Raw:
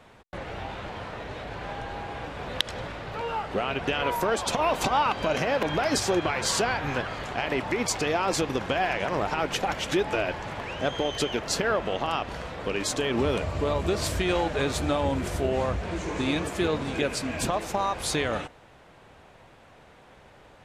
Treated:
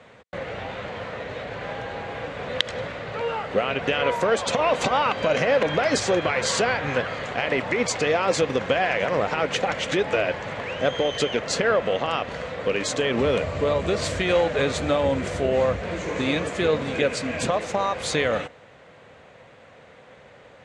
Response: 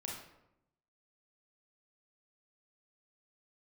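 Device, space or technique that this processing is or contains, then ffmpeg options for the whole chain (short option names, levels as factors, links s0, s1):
car door speaker: -af "highpass=92,equalizer=f=340:t=q:w=4:g=-5,equalizer=f=510:t=q:w=4:g=7,equalizer=f=870:t=q:w=4:g=-4,equalizer=f=2000:t=q:w=4:g=4,equalizer=f=5300:t=q:w=4:g=-4,lowpass=f=7900:w=0.5412,lowpass=f=7900:w=1.3066,volume=1.41"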